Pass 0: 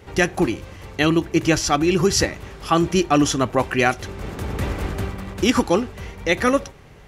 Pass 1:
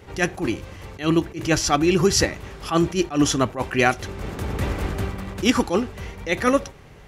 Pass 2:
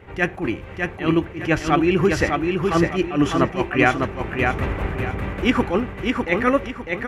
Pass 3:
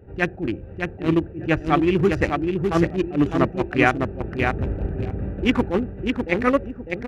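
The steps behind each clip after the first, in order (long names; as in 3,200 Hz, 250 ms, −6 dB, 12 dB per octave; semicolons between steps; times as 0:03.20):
level that may rise only so fast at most 200 dB per second
high shelf with overshoot 3,400 Hz −12 dB, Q 1.5; on a send: repeating echo 603 ms, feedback 32%, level −4 dB
adaptive Wiener filter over 41 samples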